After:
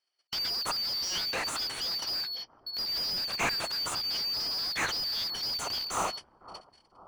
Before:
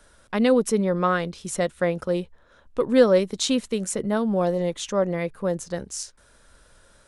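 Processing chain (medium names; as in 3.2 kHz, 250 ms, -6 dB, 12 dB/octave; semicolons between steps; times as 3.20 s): four frequency bands reordered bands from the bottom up 4321; gate -48 dBFS, range -51 dB; dynamic bell 790 Hz, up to +4 dB, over -42 dBFS, Q 1.1; in parallel at +0.5 dB: compressor with a negative ratio -27 dBFS; on the sum: overload inside the chain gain 19.5 dB; overdrive pedal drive 29 dB, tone 1.3 kHz, clips at -19 dBFS; bucket-brigade echo 507 ms, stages 4096, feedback 52%, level -16 dB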